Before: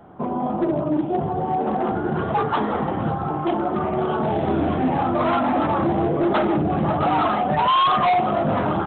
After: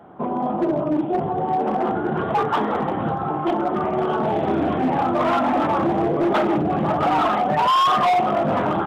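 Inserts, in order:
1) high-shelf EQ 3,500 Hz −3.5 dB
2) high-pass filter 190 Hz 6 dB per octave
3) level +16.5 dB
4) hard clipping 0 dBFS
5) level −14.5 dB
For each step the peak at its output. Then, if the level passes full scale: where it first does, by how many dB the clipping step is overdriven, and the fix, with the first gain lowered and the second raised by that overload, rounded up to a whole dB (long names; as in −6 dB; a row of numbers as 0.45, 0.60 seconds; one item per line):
−12.5, −12.0, +4.5, 0.0, −14.5 dBFS
step 3, 4.5 dB
step 3 +11.5 dB, step 5 −9.5 dB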